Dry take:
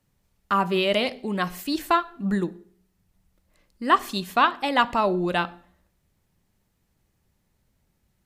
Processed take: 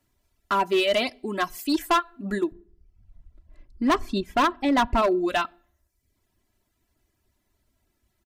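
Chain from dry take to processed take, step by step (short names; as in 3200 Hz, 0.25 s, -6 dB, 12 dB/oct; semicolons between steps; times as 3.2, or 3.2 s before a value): 2.52–5.02 RIAA curve playback; reverb removal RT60 0.7 s; low shelf 110 Hz -3.5 dB; comb 3 ms, depth 71%; hard clip -16.5 dBFS, distortion -9 dB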